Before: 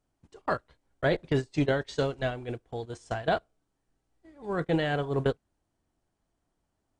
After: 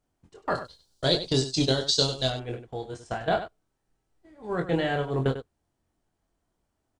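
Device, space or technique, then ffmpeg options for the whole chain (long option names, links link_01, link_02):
slapback doubling: -filter_complex "[0:a]asettb=1/sr,asplit=3[link_01][link_02][link_03];[link_01]atrim=end=0.554[link_04];[link_02]atrim=start=0.55:end=2.3,asetpts=PTS-STARTPTS,afade=type=in:duration=0.004:curve=qsin,afade=type=out:start_time=1.746:duration=0.004:curve=qsin,highshelf=frequency=3000:width_type=q:width=3:gain=13.5[link_05];[link_03]atrim=start=2.296[link_06];[link_04][link_05]acrossfade=duration=0.004:curve1=hsin:curve2=qsin[link_07];[link_07][link_06]acrossfade=duration=0.004:curve1=qsin:curve2=hsin,asplit=3[link_08][link_09][link_10];[link_09]adelay=23,volume=-5dB[link_11];[link_10]adelay=97,volume=-11dB[link_12];[link_08][link_11][link_12]amix=inputs=3:normalize=0"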